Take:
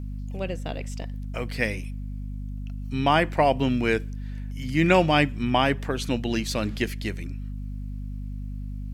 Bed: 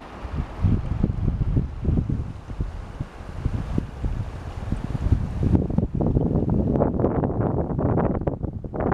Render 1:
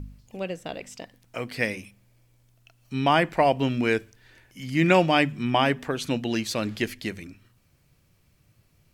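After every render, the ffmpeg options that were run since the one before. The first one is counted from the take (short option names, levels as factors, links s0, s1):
-af "bandreject=f=50:t=h:w=4,bandreject=f=100:t=h:w=4,bandreject=f=150:t=h:w=4,bandreject=f=200:t=h:w=4,bandreject=f=250:t=h:w=4"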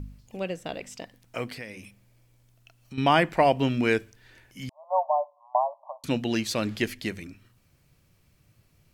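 -filter_complex "[0:a]asettb=1/sr,asplit=3[s0][s1][s2];[s0]atrim=end=1.534[s3];[s1]atrim=start=1.53:end=2.98,asetpts=PTS-STARTPTS,afade=t=in:d=0.004:c=qsin,afade=t=out:st=1.446:d=0.004:c=qsin,acompressor=threshold=0.0112:ratio=3:attack=3.2:release=140:knee=1:detection=peak[s4];[s2]atrim=start=2.976[s5];[s3][s4]acrossfade=d=0.004:c1=hsin:c2=qsin[s6];[s6][s5]acrossfade=d=0.004:c1=qsin:c2=hsin,asettb=1/sr,asplit=3[s7][s8][s9];[s7]atrim=end=4.694[s10];[s8]atrim=start=4.69:end=6.04,asetpts=PTS-STARTPTS,afade=t=in:d=0.004:c=qsin,afade=t=out:st=1.346:d=0.004:c=qsin,asuperpass=centerf=790:order=20:qfactor=1.5[s11];[s9]atrim=start=6.036[s12];[s10][s11]acrossfade=d=0.004:c1=hsin:c2=qsin[s13];[s13][s12]acrossfade=d=0.004:c1=qsin:c2=hsin"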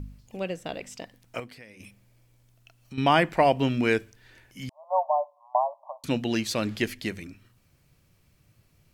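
-filter_complex "[0:a]asplit=3[s0][s1][s2];[s0]atrim=end=1.402[s3];[s1]atrim=start=1.398:end=1.802,asetpts=PTS-STARTPTS,volume=0.376[s4];[s2]atrim=start=1.798[s5];[s3][s4]acrossfade=d=0.004:c1=hsin:c2=hsin[s6];[s6][s5]acrossfade=d=0.004:c1=hsin:c2=hsin"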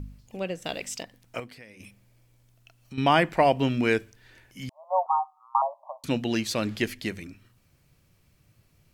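-filter_complex "[0:a]asettb=1/sr,asplit=3[s0][s1][s2];[s0]atrim=end=0.624[s3];[s1]atrim=start=0.62:end=1.03,asetpts=PTS-STARTPTS,afade=t=in:d=0.004:c=qsin,afade=t=out:st=0.406:d=0.004:c=qsin,highshelf=f=2300:g=10[s4];[s2]atrim=start=1.026[s5];[s3][s4]acrossfade=d=0.004:c1=hsin:c2=qsin[s6];[s6][s5]acrossfade=d=0.004:c1=qsin:c2=hsin,asettb=1/sr,asplit=3[s7][s8][s9];[s7]atrim=end=5.064[s10];[s8]atrim=start=5.06:end=5.62,asetpts=PTS-STARTPTS,afade=t=in:d=0.004:c=qsin,afade=t=out:st=0.556:d=0.004:c=qsin,afreqshift=190[s11];[s9]atrim=start=5.616[s12];[s10][s11]acrossfade=d=0.004:c1=hsin:c2=qsin[s13];[s13][s12]acrossfade=d=0.004:c1=qsin:c2=hsin"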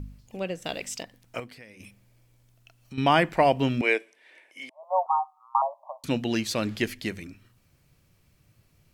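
-filter_complex "[0:a]asettb=1/sr,asplit=3[s0][s1][s2];[s0]atrim=end=3.814[s3];[s1]atrim=start=3.81:end=4.83,asetpts=PTS-STARTPTS,afade=t=in:d=0.004:c=qsin,afade=t=out:st=1.016:d=0.004:c=qsin,highpass=f=350:w=0.5412,highpass=f=350:w=1.3066,equalizer=f=410:t=q:w=4:g=-3,equalizer=f=600:t=q:w=4:g=5,equalizer=f=1400:t=q:w=4:g=-7,equalizer=f=2200:t=q:w=4:g=8,equalizer=f=4600:t=q:w=4:g=-8,equalizer=f=6700:t=q:w=4:g=-9,lowpass=f=10000:w=0.5412,lowpass=f=10000:w=1.3066[s4];[s2]atrim=start=4.826[s5];[s3][s4]acrossfade=d=0.004:c1=hsin:c2=qsin[s6];[s6][s5]acrossfade=d=0.004:c1=qsin:c2=hsin"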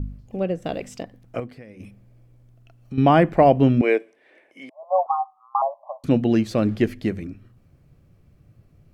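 -af "tiltshelf=f=1500:g=9.5,bandreject=f=930:w=9.8"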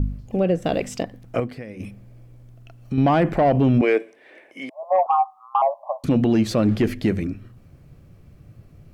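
-af "acontrast=81,alimiter=limit=0.282:level=0:latency=1:release=29"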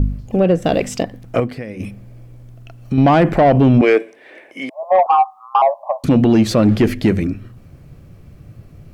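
-af "acontrast=76"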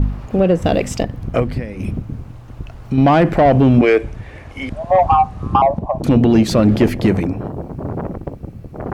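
-filter_complex "[1:a]volume=0.708[s0];[0:a][s0]amix=inputs=2:normalize=0"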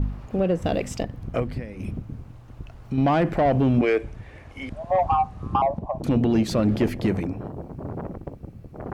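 -af "volume=0.376"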